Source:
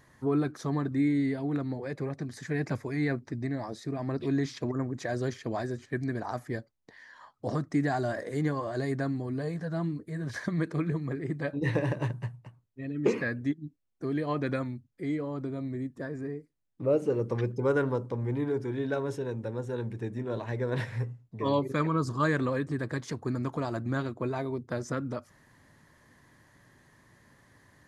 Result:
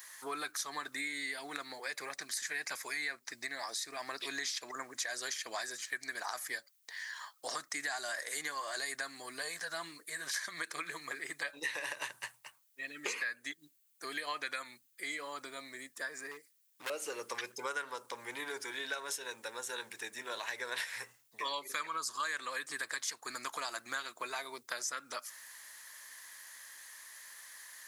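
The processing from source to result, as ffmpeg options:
ffmpeg -i in.wav -filter_complex "[0:a]asettb=1/sr,asplit=3[link_01][link_02][link_03];[link_01]atrim=end=12.954[link_04];[link_02]atrim=start=12.95:end=15.1,asetpts=PTS-STARTPTS,afade=type=in:duration=0.004:curve=qsin,afade=type=out:start_time=2.146:duration=0.004:curve=qsin,bandreject=frequency=5500:width=12[link_05];[link_03]atrim=start=15.096[link_06];[link_04][link_05]acrossfade=duration=0.004:curve1=hsin:curve2=qsin[link_07];[link_07][link_06]acrossfade=duration=0.004:curve1=qsin:curve2=hsin,asettb=1/sr,asplit=3[link_08][link_09][link_10];[link_08]atrim=end=16.314[link_11];[link_09]atrim=start=16.31:end=16.9,asetpts=PTS-STARTPTS,afade=type=in:duration=0.004:curve=qsin,afade=type=out:start_time=0.586:duration=0.004:curve=qsin,asoftclip=type=hard:threshold=-32dB[link_12];[link_10]atrim=start=16.896[link_13];[link_11][link_12]acrossfade=duration=0.004:curve1=hsin:curve2=qsin[link_14];[link_14][link_13]acrossfade=duration=0.004:curve1=qsin:curve2=hsin,highpass=1400,aemphasis=mode=production:type=75kf,acompressor=threshold=-44dB:ratio=4,volume=8dB" out.wav

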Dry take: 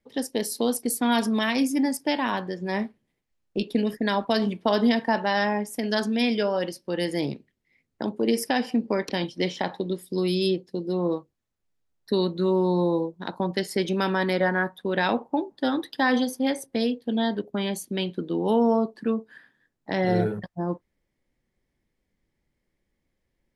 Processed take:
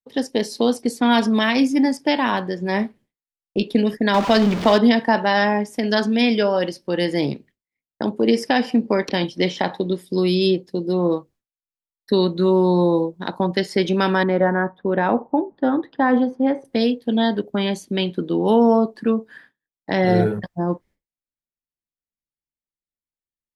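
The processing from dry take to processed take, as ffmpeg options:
ffmpeg -i in.wav -filter_complex "[0:a]asettb=1/sr,asplit=3[link_01][link_02][link_03];[link_01]atrim=end=4.144[link_04];[link_02]atrim=start=4.14:end=4.78,asetpts=PTS-STARTPTS,afade=type=in:duration=0.004:curve=qsin,afade=type=out:start_time=0.636:duration=0.004:curve=qsin,aeval=exprs='val(0)+0.5*0.0473*sgn(val(0))':channel_layout=same[link_05];[link_03]atrim=start=4.776[link_06];[link_04][link_05]acrossfade=duration=0.004:curve1=hsin:curve2=qsin[link_07];[link_07][link_06]acrossfade=duration=0.004:curve1=qsin:curve2=hsin,asettb=1/sr,asplit=3[link_08][link_09][link_10];[link_08]atrim=end=14.234[link_11];[link_09]atrim=start=14.23:end=16.65,asetpts=PTS-STARTPTS,afade=type=in:duration=0.004:curve=qsin,afade=type=out:start_time=2.416:duration=0.004:curve=qsin,lowpass=1300[link_12];[link_10]atrim=start=16.646[link_13];[link_11][link_12]acrossfade=duration=0.004:curve1=hsin:curve2=qsin[link_14];[link_14][link_13]acrossfade=duration=0.004:curve1=qsin:curve2=hsin,acrossover=split=6500[link_15][link_16];[link_16]acompressor=threshold=-56dB:ratio=4:attack=1:release=60[link_17];[link_15][link_17]amix=inputs=2:normalize=0,agate=range=-33dB:threshold=-49dB:ratio=3:detection=peak,volume=6dB" out.wav

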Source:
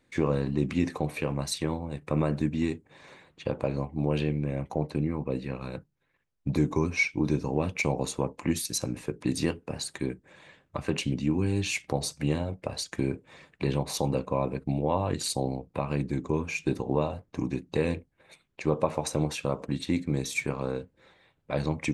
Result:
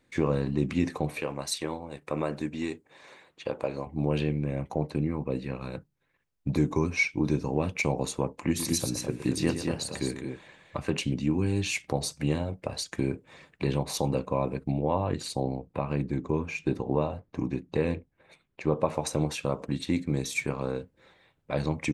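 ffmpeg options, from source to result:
ffmpeg -i in.wav -filter_complex "[0:a]asettb=1/sr,asplit=3[link_01][link_02][link_03];[link_01]atrim=end=1.204[link_04];[link_02]atrim=start=1.2:end=3.87,asetpts=PTS-STARTPTS,afade=type=in:duration=0.004:curve=qsin,afade=type=out:start_time=2.666:duration=0.004:curve=qsin,bass=frequency=250:gain=-11,treble=frequency=4000:gain=1[link_05];[link_03]atrim=start=3.866[link_06];[link_04][link_05]acrossfade=duration=0.004:curve1=hsin:curve2=qsin[link_07];[link_07][link_06]acrossfade=duration=0.004:curve1=qsin:curve2=hsin,asplit=3[link_08][link_09][link_10];[link_08]afade=type=out:start_time=8.57:duration=0.02[link_11];[link_09]aecho=1:1:118|208|232:0.299|0.316|0.473,afade=type=in:start_time=8.57:duration=0.02,afade=type=out:start_time=10.78:duration=0.02[link_12];[link_10]afade=type=in:start_time=10.78:duration=0.02[link_13];[link_11][link_12][link_13]amix=inputs=3:normalize=0,asettb=1/sr,asplit=3[link_14][link_15][link_16];[link_14]atrim=end=14.714[link_17];[link_15]atrim=start=14.71:end=18.85,asetpts=PTS-STARTPTS,afade=type=in:duration=0.004:curve=qsin,afade=type=out:start_time=4.136:duration=0.004:curve=qsin,highshelf=frequency=4600:gain=-10.5[link_18];[link_16]atrim=start=18.846[link_19];[link_17][link_18]acrossfade=duration=0.004:curve1=hsin:curve2=qsin[link_20];[link_20][link_19]acrossfade=duration=0.004:curve1=qsin:curve2=hsin" out.wav

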